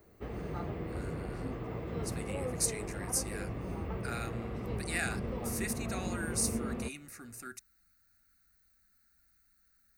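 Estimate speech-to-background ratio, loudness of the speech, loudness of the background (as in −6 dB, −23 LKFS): 1.0 dB, −38.0 LKFS, −39.0 LKFS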